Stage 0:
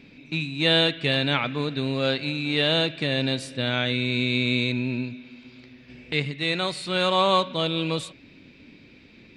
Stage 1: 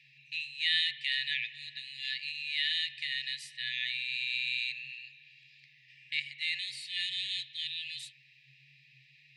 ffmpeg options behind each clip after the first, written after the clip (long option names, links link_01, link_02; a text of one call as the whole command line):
ffmpeg -i in.wav -af "afreqshift=130,tiltshelf=frequency=1200:gain=9,afftfilt=real='re*(1-between(b*sr/4096,140,1700))':imag='im*(1-between(b*sr/4096,140,1700))':win_size=4096:overlap=0.75" out.wav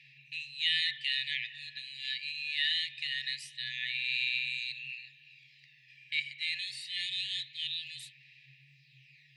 ffmpeg -i in.wav -af "aphaser=in_gain=1:out_gain=1:delay=1.3:decay=0.43:speed=0.24:type=sinusoidal,volume=-1dB" out.wav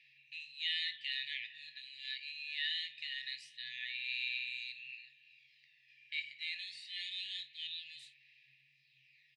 ffmpeg -i in.wav -filter_complex "[0:a]highpass=300,lowpass=6300,asplit=2[link_01][link_02];[link_02]aecho=0:1:23|53:0.266|0.178[link_03];[link_01][link_03]amix=inputs=2:normalize=0,volume=-7dB" out.wav